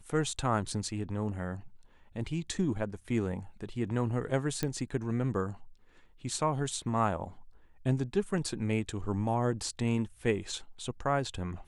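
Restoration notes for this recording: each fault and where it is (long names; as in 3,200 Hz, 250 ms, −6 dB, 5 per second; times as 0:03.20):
0:04.63: click −17 dBFS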